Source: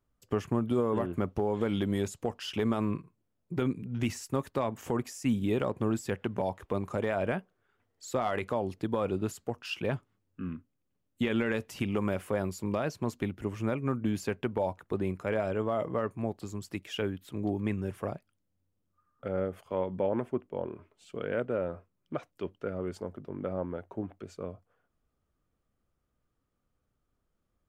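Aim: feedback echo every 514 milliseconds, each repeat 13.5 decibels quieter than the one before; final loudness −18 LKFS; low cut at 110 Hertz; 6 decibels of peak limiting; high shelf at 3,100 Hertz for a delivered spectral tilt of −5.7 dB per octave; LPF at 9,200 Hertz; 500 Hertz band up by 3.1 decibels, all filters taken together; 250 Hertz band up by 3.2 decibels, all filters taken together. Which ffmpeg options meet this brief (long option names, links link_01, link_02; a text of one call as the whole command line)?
ffmpeg -i in.wav -af "highpass=110,lowpass=9200,equalizer=frequency=250:width_type=o:gain=3.5,equalizer=frequency=500:width_type=o:gain=3,highshelf=frequency=3100:gain=-6,alimiter=limit=-20dB:level=0:latency=1,aecho=1:1:514|1028:0.211|0.0444,volume=14.5dB" out.wav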